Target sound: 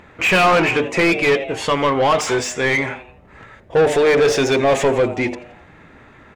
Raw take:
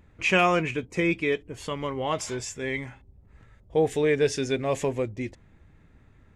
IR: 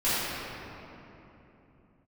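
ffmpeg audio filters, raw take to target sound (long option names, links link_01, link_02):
-filter_complex "[0:a]bandreject=frequency=50:width_type=h:width=6,bandreject=frequency=100:width_type=h:width=6,bandreject=frequency=150:width_type=h:width=6,bandreject=frequency=200:width_type=h:width=6,bandreject=frequency=250:width_type=h:width=6,bandreject=frequency=300:width_type=h:width=6,bandreject=frequency=350:width_type=h:width=6,bandreject=frequency=400:width_type=h:width=6,bandreject=frequency=450:width_type=h:width=6,asplit=5[link_01][link_02][link_03][link_04][link_05];[link_02]adelay=85,afreqshift=120,volume=-20dB[link_06];[link_03]adelay=170,afreqshift=240,volume=-26.6dB[link_07];[link_04]adelay=255,afreqshift=360,volume=-33.1dB[link_08];[link_05]adelay=340,afreqshift=480,volume=-39.7dB[link_09];[link_01][link_06][link_07][link_08][link_09]amix=inputs=5:normalize=0,asplit=2[link_10][link_11];[link_11]highpass=frequency=720:poles=1,volume=25dB,asoftclip=type=tanh:threshold=-10dB[link_12];[link_10][link_12]amix=inputs=2:normalize=0,lowpass=frequency=2000:poles=1,volume=-6dB,volume=4dB"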